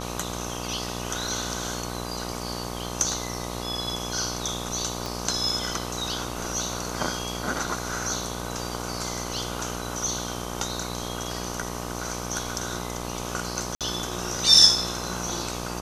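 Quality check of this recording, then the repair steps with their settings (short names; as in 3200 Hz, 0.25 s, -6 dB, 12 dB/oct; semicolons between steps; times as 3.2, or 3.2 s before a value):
buzz 60 Hz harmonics 21 -34 dBFS
5.06 pop
13.75–13.81 gap 57 ms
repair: de-click; de-hum 60 Hz, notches 21; interpolate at 13.75, 57 ms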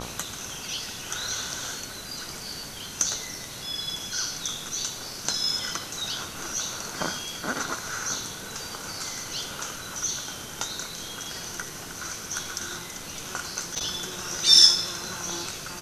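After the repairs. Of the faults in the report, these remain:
5.06 pop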